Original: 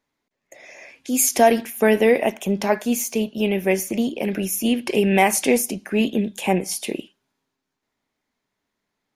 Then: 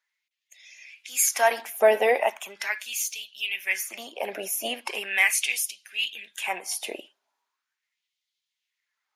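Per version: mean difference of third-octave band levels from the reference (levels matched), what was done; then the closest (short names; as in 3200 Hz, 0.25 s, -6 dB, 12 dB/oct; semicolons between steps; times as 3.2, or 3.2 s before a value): 9.5 dB: bin magnitudes rounded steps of 15 dB; LFO high-pass sine 0.39 Hz 650–3400 Hz; gain -3 dB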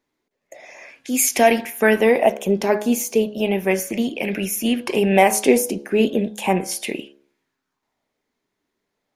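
2.0 dB: de-hum 69.87 Hz, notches 24; LFO bell 0.35 Hz 340–2400 Hz +8 dB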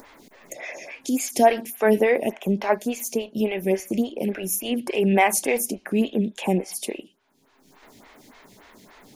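4.5 dB: upward compressor, threshold -22 dBFS; photocell phaser 3.5 Hz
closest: second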